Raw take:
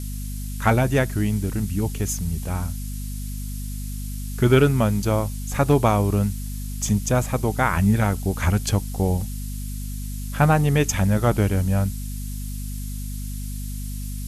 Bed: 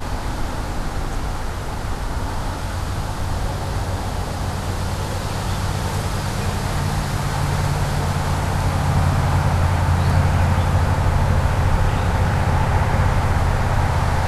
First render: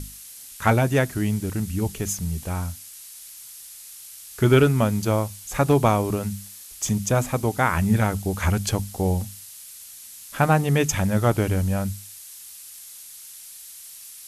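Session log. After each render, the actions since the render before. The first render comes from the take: hum notches 50/100/150/200/250 Hz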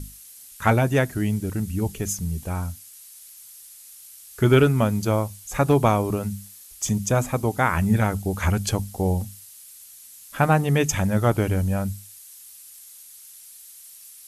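noise reduction 6 dB, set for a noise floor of -43 dBFS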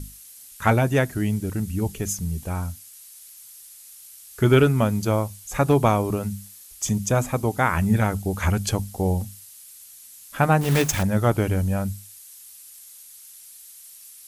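10.61–11.04 s: block-companded coder 3-bit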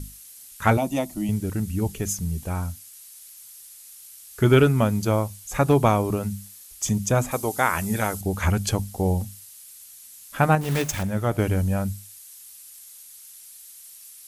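0.77–1.29 s: static phaser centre 430 Hz, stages 6; 7.31–8.21 s: tone controls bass -9 dB, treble +8 dB; 10.55–11.39 s: feedback comb 54 Hz, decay 1.5 s, harmonics odd, mix 40%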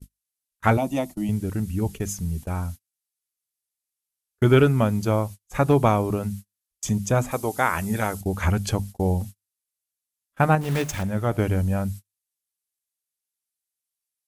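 gate -33 dBFS, range -37 dB; treble shelf 4.3 kHz -5.5 dB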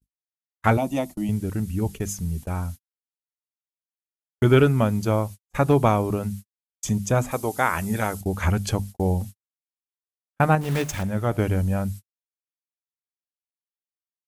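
gate -37 dBFS, range -29 dB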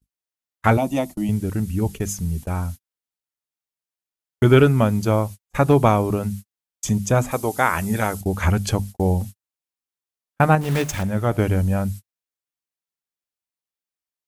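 trim +3 dB; peak limiter -3 dBFS, peak gain reduction 1 dB

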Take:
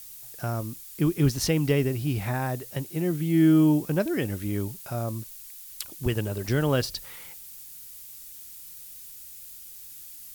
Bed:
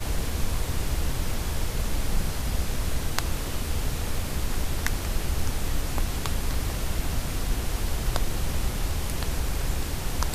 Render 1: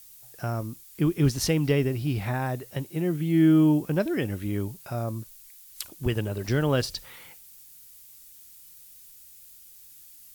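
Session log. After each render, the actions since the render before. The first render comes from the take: noise print and reduce 6 dB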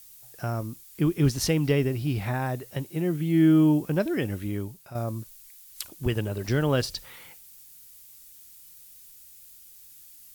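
4.38–4.95 s: fade out, to -9.5 dB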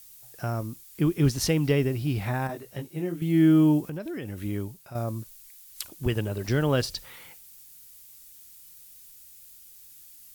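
2.47–3.22 s: detune thickener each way 26 cents; 3.80–4.38 s: compression 4:1, threshold -32 dBFS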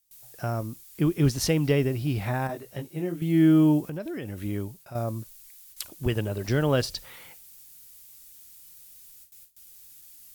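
gate with hold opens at -39 dBFS; peaking EQ 620 Hz +2.5 dB 0.59 oct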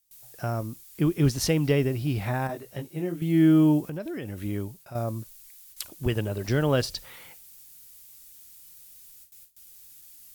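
no audible change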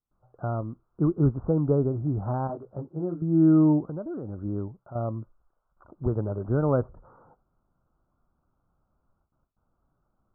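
steep low-pass 1.4 kHz 96 dB/octave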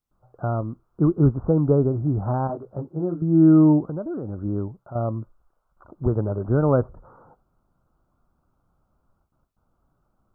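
trim +4.5 dB

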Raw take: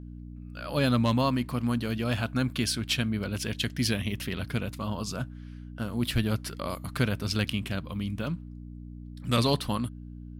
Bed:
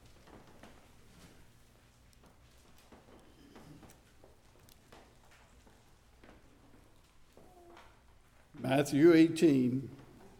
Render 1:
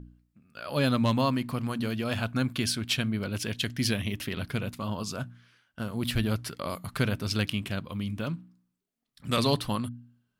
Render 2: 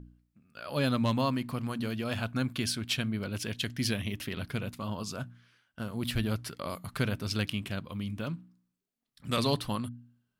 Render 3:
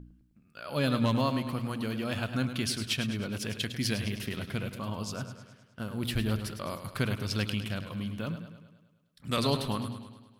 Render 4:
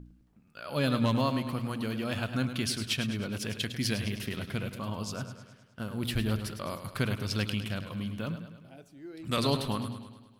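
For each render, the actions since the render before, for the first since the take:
de-hum 60 Hz, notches 5
trim -3 dB
modulated delay 104 ms, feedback 57%, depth 55 cents, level -10 dB
add bed -22 dB

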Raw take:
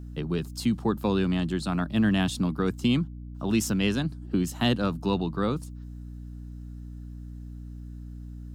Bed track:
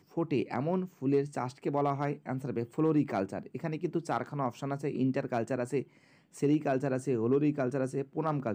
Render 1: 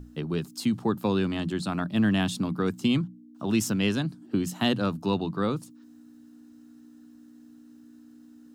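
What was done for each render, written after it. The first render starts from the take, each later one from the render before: hum notches 60/120/180 Hz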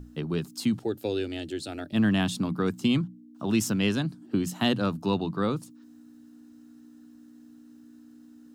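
0.79–1.93 s: static phaser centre 440 Hz, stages 4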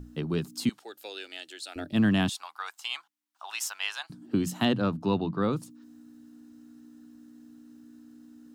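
0.69–1.76 s: high-pass 1 kHz; 2.29–4.10 s: Chebyshev high-pass 790 Hz, order 4; 4.65–5.53 s: low-pass 2.9 kHz 6 dB/octave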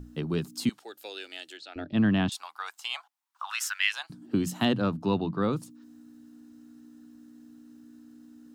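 1.57–2.32 s: distance through air 170 m; 2.93–3.92 s: resonant high-pass 610 Hz -> 2.1 kHz, resonance Q 3.6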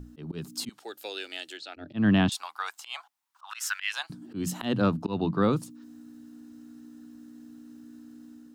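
level rider gain up to 3.5 dB; slow attack 174 ms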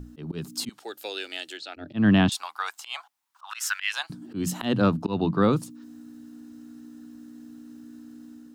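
trim +3 dB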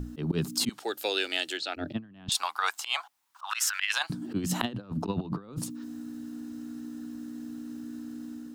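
compressor with a negative ratio -30 dBFS, ratio -0.5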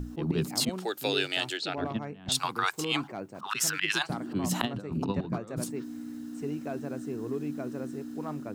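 add bed track -7 dB

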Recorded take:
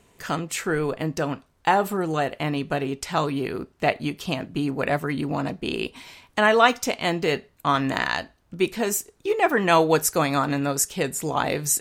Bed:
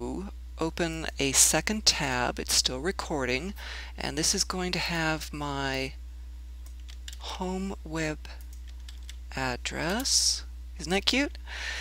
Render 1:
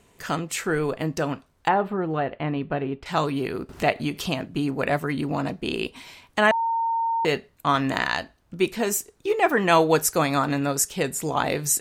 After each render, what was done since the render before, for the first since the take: 1.68–3.06 s: distance through air 410 m; 3.69–4.42 s: upward compressor, threshold -23 dBFS; 6.51–7.25 s: bleep 915 Hz -21 dBFS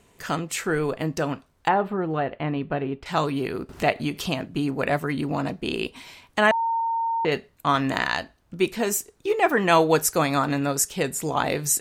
6.80–7.32 s: distance through air 190 m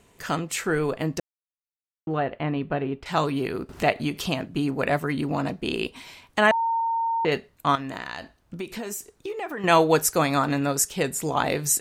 1.20–2.07 s: mute; 7.75–9.64 s: compression, threshold -29 dBFS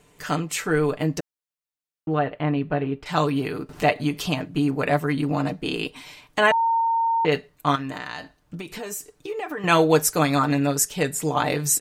comb 6.7 ms, depth 59%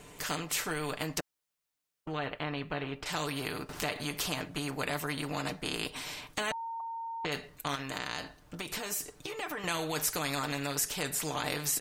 peak limiter -13 dBFS, peak gain reduction 8 dB; spectrum-flattening compressor 2:1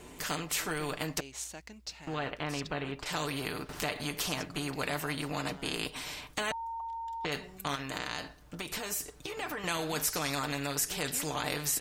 add bed -20.5 dB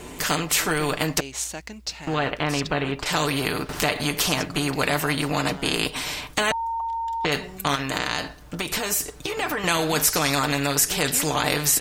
trim +11 dB

